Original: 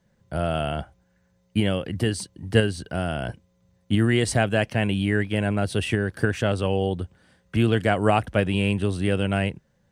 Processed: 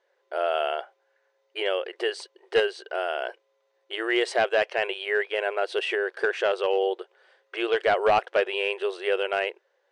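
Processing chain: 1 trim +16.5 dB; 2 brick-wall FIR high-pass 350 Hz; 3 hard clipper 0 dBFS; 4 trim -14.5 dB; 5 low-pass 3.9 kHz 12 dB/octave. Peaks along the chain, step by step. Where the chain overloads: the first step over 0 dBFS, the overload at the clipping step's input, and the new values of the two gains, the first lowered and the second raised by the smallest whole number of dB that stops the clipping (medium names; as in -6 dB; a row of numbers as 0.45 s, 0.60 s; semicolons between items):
+12.5 dBFS, +9.0 dBFS, 0.0 dBFS, -14.5 dBFS, -14.0 dBFS; step 1, 9.0 dB; step 1 +7.5 dB, step 4 -5.5 dB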